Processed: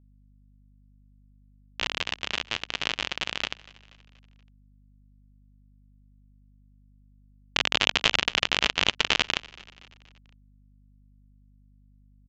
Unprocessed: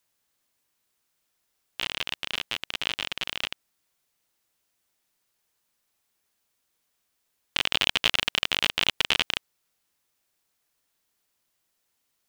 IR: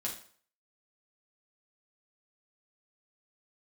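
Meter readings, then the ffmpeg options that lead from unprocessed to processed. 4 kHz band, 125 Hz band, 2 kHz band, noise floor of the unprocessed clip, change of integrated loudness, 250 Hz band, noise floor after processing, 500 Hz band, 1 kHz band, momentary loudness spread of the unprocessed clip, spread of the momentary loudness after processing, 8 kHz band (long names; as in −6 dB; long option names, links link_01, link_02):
0.0 dB, +4.0 dB, +1.5 dB, −76 dBFS, +0.5 dB, +3.5 dB, −58 dBFS, +3.5 dB, +3.5 dB, 9 LU, 9 LU, +1.5 dB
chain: -filter_complex "[0:a]equalizer=frequency=3200:width=1.7:gain=-4,aresample=16000,aeval=exprs='val(0)*gte(abs(val(0)),0.00596)':channel_layout=same,aresample=44100,aeval=exprs='val(0)+0.001*(sin(2*PI*50*n/s)+sin(2*PI*2*50*n/s)/2+sin(2*PI*3*50*n/s)/3+sin(2*PI*4*50*n/s)/4+sin(2*PI*5*50*n/s)/5)':channel_layout=same,asplit=5[link_01][link_02][link_03][link_04][link_05];[link_02]adelay=239,afreqshift=-33,volume=-22dB[link_06];[link_03]adelay=478,afreqshift=-66,volume=-27.5dB[link_07];[link_04]adelay=717,afreqshift=-99,volume=-33dB[link_08];[link_05]adelay=956,afreqshift=-132,volume=-38.5dB[link_09];[link_01][link_06][link_07][link_08][link_09]amix=inputs=5:normalize=0,volume=3.5dB"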